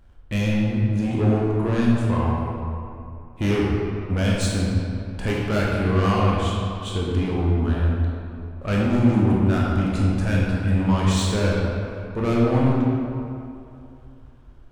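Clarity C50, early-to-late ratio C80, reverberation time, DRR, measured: -2.0 dB, 0.0 dB, 2.7 s, -4.5 dB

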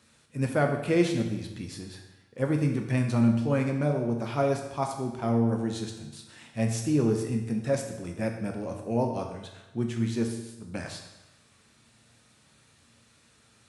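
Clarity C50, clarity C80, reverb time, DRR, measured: 6.0 dB, 8.0 dB, 1.0 s, 2.5 dB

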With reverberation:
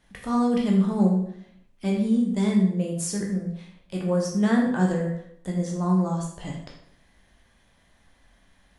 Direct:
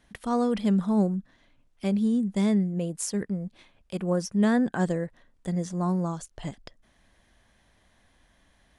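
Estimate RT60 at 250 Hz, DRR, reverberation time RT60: 0.75 s, -1.5 dB, 0.65 s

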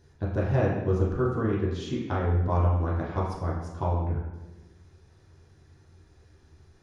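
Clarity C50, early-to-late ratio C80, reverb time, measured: 2.5 dB, 5.0 dB, 1.2 s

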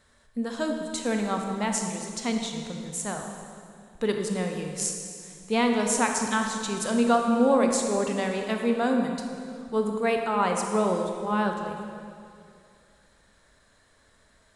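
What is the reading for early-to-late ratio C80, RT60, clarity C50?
5.0 dB, 2.4 s, 3.5 dB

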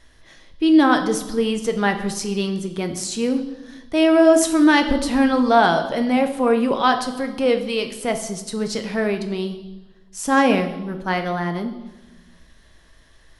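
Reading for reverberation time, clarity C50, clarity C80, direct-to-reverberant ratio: 1.1 s, 10.5 dB, 12.5 dB, 6.0 dB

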